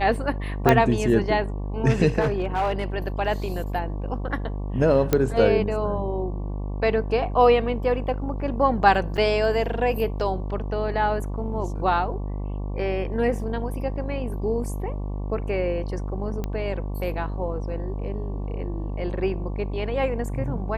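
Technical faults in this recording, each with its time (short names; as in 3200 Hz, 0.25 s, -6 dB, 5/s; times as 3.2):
buzz 50 Hz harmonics 23 -29 dBFS
0.69 pop -5 dBFS
2.2–2.84 clipped -18.5 dBFS
5.13 pop -6 dBFS
9.17–9.18 gap 7.1 ms
16.44 pop -16 dBFS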